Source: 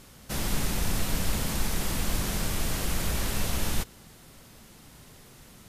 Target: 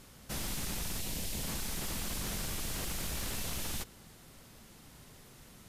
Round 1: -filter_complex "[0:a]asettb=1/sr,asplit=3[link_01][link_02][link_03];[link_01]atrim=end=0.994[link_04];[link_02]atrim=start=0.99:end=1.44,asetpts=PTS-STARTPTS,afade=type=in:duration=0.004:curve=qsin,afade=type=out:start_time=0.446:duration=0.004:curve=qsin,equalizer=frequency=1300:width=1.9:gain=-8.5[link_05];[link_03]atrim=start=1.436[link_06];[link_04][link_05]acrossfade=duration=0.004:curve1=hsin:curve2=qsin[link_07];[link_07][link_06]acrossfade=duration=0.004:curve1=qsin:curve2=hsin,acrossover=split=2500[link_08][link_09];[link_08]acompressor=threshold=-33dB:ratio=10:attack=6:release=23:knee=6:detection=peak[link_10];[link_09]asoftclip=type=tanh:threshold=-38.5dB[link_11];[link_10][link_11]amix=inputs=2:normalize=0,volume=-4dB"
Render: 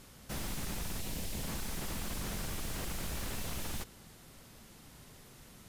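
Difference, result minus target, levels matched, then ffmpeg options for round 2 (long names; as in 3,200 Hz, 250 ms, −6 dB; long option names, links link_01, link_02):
soft clipping: distortion +13 dB
-filter_complex "[0:a]asettb=1/sr,asplit=3[link_01][link_02][link_03];[link_01]atrim=end=0.994[link_04];[link_02]atrim=start=0.99:end=1.44,asetpts=PTS-STARTPTS,afade=type=in:duration=0.004:curve=qsin,afade=type=out:start_time=0.446:duration=0.004:curve=qsin,equalizer=frequency=1300:width=1.9:gain=-8.5[link_05];[link_03]atrim=start=1.436[link_06];[link_04][link_05]acrossfade=duration=0.004:curve1=hsin:curve2=qsin[link_07];[link_07][link_06]acrossfade=duration=0.004:curve1=qsin:curve2=hsin,acrossover=split=2500[link_08][link_09];[link_08]acompressor=threshold=-33dB:ratio=10:attack=6:release=23:knee=6:detection=peak[link_10];[link_09]asoftclip=type=tanh:threshold=-27.5dB[link_11];[link_10][link_11]amix=inputs=2:normalize=0,volume=-4dB"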